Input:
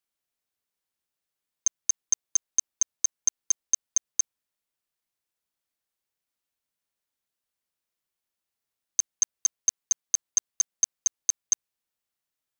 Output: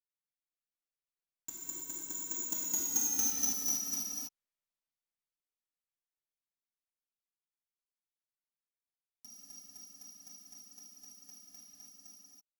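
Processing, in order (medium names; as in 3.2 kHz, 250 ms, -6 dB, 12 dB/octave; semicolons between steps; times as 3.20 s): dead-time distortion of 0.053 ms; Doppler pass-by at 3.02 s, 38 m/s, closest 20 m; gated-style reverb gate 350 ms flat, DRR -7.5 dB; trim -5.5 dB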